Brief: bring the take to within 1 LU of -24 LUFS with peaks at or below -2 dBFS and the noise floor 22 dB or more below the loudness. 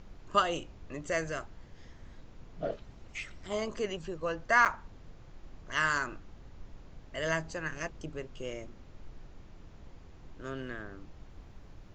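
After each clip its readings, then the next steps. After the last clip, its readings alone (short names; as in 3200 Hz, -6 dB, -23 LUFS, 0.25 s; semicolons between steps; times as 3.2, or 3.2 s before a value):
dropouts 1; longest dropout 8.1 ms; noise floor -53 dBFS; noise floor target -56 dBFS; loudness -33.5 LUFS; peak -13.0 dBFS; loudness target -24.0 LUFS
-> interpolate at 4.65, 8.1 ms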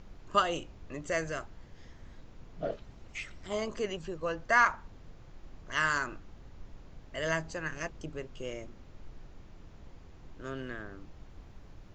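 dropouts 0; noise floor -53 dBFS; noise floor target -56 dBFS
-> noise print and reduce 6 dB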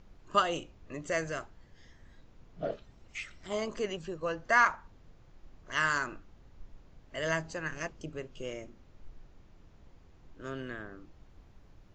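noise floor -59 dBFS; loudness -33.5 LUFS; peak -13.0 dBFS; loudness target -24.0 LUFS
-> gain +9.5 dB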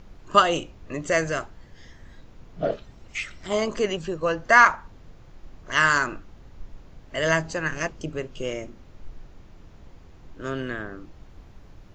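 loudness -24.0 LUFS; peak -3.5 dBFS; noise floor -49 dBFS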